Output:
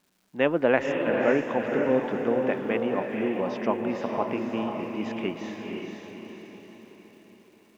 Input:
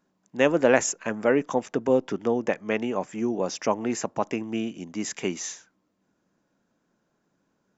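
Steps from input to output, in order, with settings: LPF 3500 Hz 24 dB/oct; crackle 520/s -53 dBFS; on a send: diffused feedback echo 0.505 s, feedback 50%, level -3 dB; on the sum: gain -2.5 dB

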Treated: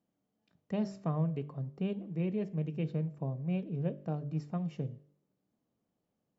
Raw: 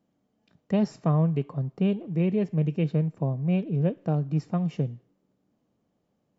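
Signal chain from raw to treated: de-hum 48.98 Hz, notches 13; gain -8.5 dB

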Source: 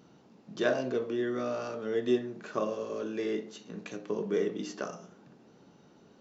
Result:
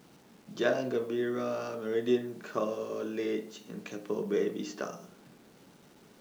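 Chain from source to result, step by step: bit-crush 10-bit

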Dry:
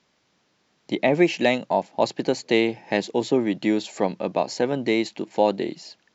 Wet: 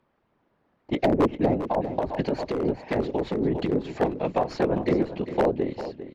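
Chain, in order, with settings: tracing distortion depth 0.087 ms; low-pass opened by the level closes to 1300 Hz, open at -19.5 dBFS; whisperiser; treble ducked by the level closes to 600 Hz, closed at -16.5 dBFS; wavefolder -13 dBFS; feedback echo 0.4 s, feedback 18%, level -12 dB; 1.66–3.73 negative-ratio compressor -24 dBFS, ratio -1

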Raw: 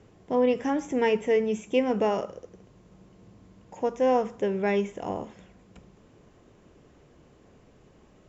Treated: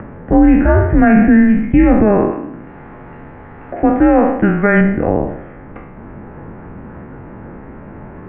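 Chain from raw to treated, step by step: spectral trails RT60 0.73 s; 2.31–4.81 tilt shelf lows -6 dB, about 910 Hz; upward compressor, threshold -37 dBFS; mistuned SSB -210 Hz 250–2100 Hz; maximiser +18 dB; gain -1 dB

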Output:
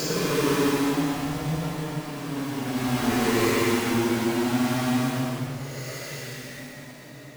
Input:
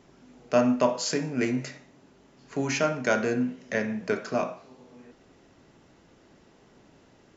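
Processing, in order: half-waves squared off; Paulstretch 11×, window 0.10 s, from 1.11; gain -1.5 dB

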